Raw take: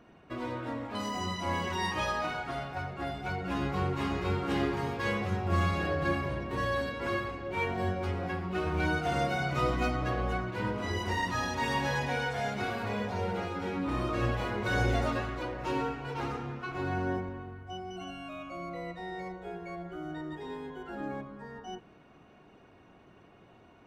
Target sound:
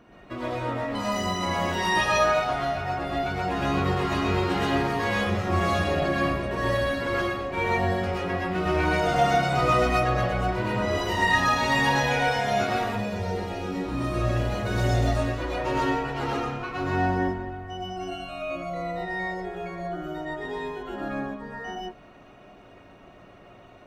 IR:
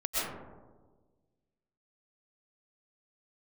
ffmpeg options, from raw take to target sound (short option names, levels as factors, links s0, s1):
-filter_complex "[0:a]asettb=1/sr,asplit=3[s0][s1][s2];[s0]atrim=end=12.844[s3];[s1]atrim=start=12.84:end=15.38,asetpts=PTS-STARTPTS,afade=t=in:d=0.004:c=qsin,afade=t=out:st=2.536:d=0.004:c=qsin,equalizer=f=1300:w=0.39:g=-8[s4];[s2]atrim=start=15.376[s5];[s3][s4]acrossfade=d=0.004:c1=hsin:c2=qsin[s6];[s6][s5]acrossfade=d=0.004:c1=qsin:c2=hsin[s7];[1:a]atrim=start_sample=2205,atrim=end_sample=6174[s8];[s7][s8]afir=irnorm=-1:irlink=0,volume=1.68"